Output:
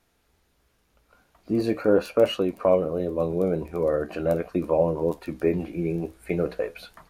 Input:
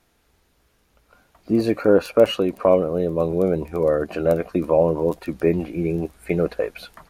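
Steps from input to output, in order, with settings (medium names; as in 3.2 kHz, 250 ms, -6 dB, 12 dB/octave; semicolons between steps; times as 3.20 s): flange 0.42 Hz, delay 10 ms, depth 8.2 ms, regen -65%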